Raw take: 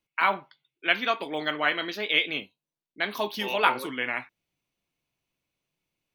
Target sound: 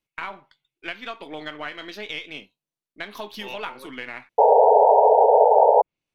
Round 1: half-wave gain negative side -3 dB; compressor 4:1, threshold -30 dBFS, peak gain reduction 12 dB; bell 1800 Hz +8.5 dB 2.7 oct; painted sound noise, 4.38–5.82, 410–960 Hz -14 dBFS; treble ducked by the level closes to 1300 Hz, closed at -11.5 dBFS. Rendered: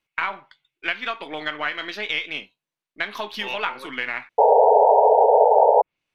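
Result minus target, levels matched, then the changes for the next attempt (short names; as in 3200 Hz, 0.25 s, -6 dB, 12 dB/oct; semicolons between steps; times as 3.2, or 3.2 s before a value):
2000 Hz band +12.0 dB
remove: bell 1800 Hz +8.5 dB 2.7 oct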